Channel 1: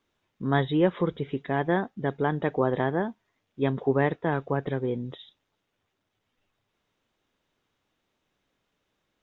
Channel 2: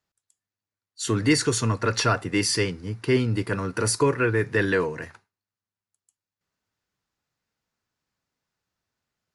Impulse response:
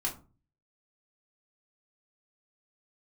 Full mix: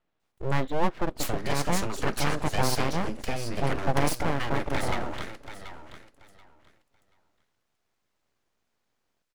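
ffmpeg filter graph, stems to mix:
-filter_complex "[0:a]lowpass=f=1k:p=1,volume=1.5dB,asplit=2[a][b];[b]volume=-23dB[c];[1:a]highpass=f=62:w=0.5412,highpass=f=62:w=1.3066,acompressor=threshold=-27dB:ratio=12,adelay=200,volume=2dB,asplit=2[d][e];[e]volume=-11dB[f];[c][f]amix=inputs=2:normalize=0,aecho=0:1:732|1464|2196:1|0.21|0.0441[g];[a][d][g]amix=inputs=3:normalize=0,aeval=exprs='abs(val(0))':c=same"

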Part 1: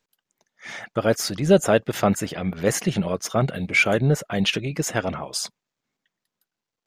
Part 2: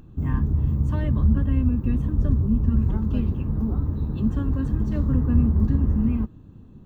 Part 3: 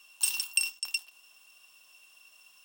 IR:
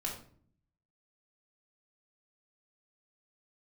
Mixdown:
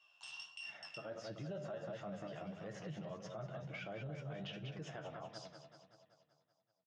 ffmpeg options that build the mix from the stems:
-filter_complex "[0:a]volume=-16dB,asplit=3[a][b][c];[b]volume=-9.5dB[d];[c]volume=-8.5dB[e];[2:a]flanger=delay=17.5:depth=5.3:speed=1.4,volume=-2.5dB,asplit=2[f][g];[g]volume=-7.5dB[h];[a][f]amix=inputs=2:normalize=0,alimiter=level_in=4dB:limit=-24dB:level=0:latency=1:release=316,volume=-4dB,volume=0dB[i];[3:a]atrim=start_sample=2205[j];[d][h]amix=inputs=2:normalize=0[k];[k][j]afir=irnorm=-1:irlink=0[l];[e]aecho=0:1:191|382|573|764|955|1146|1337|1528|1719:1|0.59|0.348|0.205|0.121|0.0715|0.0422|0.0249|0.0147[m];[i][l][m]amix=inputs=3:normalize=0,highpass=f=130:w=0.5412,highpass=f=130:w=1.3066,equalizer=f=130:t=q:w=4:g=9,equalizer=f=240:t=q:w=4:g=-8,equalizer=f=410:t=q:w=4:g=-6,equalizer=f=630:t=q:w=4:g=5,equalizer=f=2.3k:t=q:w=4:g=-7,equalizer=f=4.2k:t=q:w=4:g=-8,lowpass=f=4.7k:w=0.5412,lowpass=f=4.7k:w=1.3066,flanger=delay=9:depth=4.5:regen=35:speed=1.5:shape=sinusoidal,alimiter=level_in=13.5dB:limit=-24dB:level=0:latency=1:release=84,volume=-13.5dB"

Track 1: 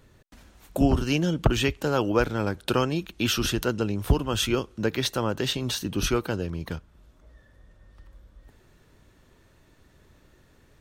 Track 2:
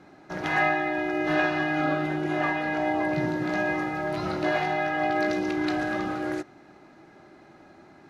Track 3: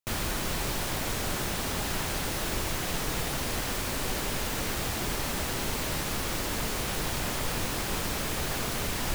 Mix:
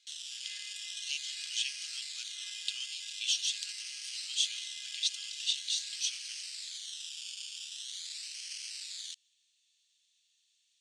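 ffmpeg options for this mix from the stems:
-filter_complex "[0:a]bandreject=f=5.1k:w=17,volume=-1.5dB[a];[1:a]acompressor=threshold=-26dB:ratio=6,volume=1.5dB[b];[2:a]acrusher=samples=17:mix=1:aa=0.000001:lfo=1:lforange=10.2:lforate=0.44,volume=1.5dB[c];[a][b][c]amix=inputs=3:normalize=0,asuperpass=centerf=5200:order=8:qfactor=0.91"

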